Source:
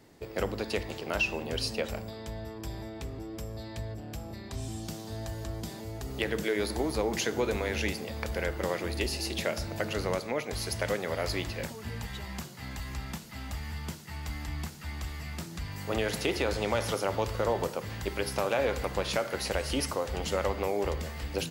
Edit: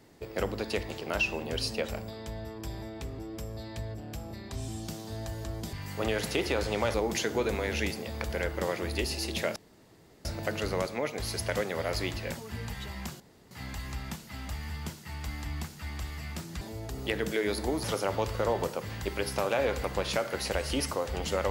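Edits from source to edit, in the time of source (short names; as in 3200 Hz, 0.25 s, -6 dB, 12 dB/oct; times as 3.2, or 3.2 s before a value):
5.73–6.96 swap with 15.63–16.84
9.58 insert room tone 0.69 s
12.53 insert room tone 0.31 s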